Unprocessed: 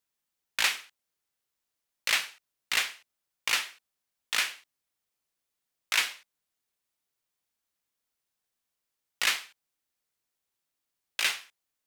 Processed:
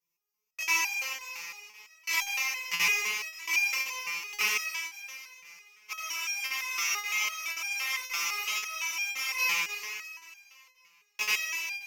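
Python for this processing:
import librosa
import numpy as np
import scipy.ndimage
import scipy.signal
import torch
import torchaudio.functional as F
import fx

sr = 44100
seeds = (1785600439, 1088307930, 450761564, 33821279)

y = fx.spec_trails(x, sr, decay_s=2.43)
y = fx.ripple_eq(y, sr, per_octave=0.79, db=15)
y = fx.spec_freeze(y, sr, seeds[0], at_s=5.93, hold_s=3.45)
y = fx.buffer_crackle(y, sr, first_s=0.63, period_s=0.53, block=2048, kind='zero')
y = fx.resonator_held(y, sr, hz=5.9, low_hz=170.0, high_hz=800.0)
y = F.gain(torch.from_numpy(y), 6.5).numpy()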